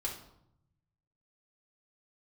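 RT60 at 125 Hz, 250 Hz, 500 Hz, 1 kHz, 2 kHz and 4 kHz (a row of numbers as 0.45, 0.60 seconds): 1.6, 1.0, 0.80, 0.75, 0.55, 0.50 seconds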